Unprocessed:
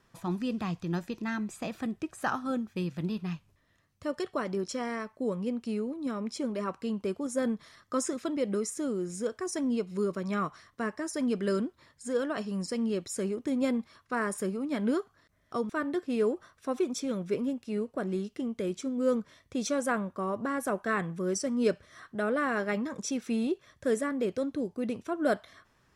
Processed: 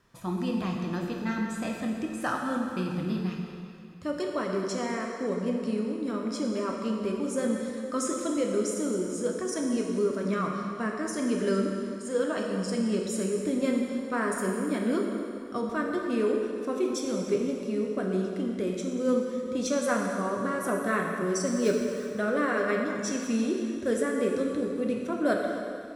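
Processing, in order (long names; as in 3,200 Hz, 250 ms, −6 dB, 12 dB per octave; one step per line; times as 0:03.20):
0:21.46–0:22.12: gap after every zero crossing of 0.081 ms
notch filter 810 Hz, Q 12
dense smooth reverb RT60 2.5 s, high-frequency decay 0.9×, DRR 0 dB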